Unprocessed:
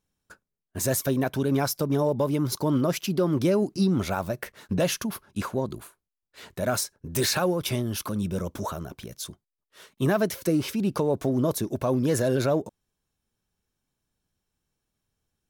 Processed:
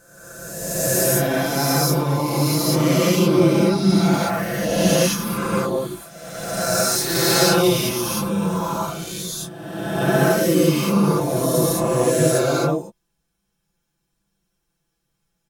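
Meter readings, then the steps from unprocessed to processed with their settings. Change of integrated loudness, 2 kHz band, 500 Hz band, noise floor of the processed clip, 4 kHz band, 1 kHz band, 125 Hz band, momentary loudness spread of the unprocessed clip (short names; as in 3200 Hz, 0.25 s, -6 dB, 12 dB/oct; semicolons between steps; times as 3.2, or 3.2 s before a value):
+7.5 dB, +10.0 dB, +7.0 dB, -75 dBFS, +10.0 dB, +9.5 dB, +7.0 dB, 11 LU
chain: spectral swells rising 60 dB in 1.57 s; comb 5.9 ms, depth 90%; non-linear reverb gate 0.23 s rising, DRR -6 dB; gain -6 dB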